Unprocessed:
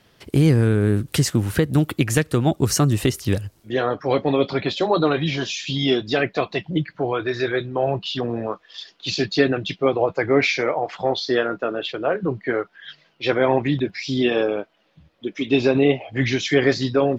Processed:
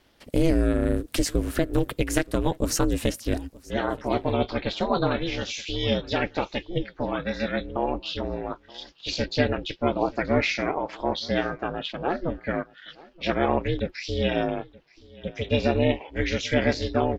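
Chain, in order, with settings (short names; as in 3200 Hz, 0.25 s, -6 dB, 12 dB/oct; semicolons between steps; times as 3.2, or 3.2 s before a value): ring modulator 170 Hz; on a send: echo 0.926 s -23 dB; on the sum: gain -2 dB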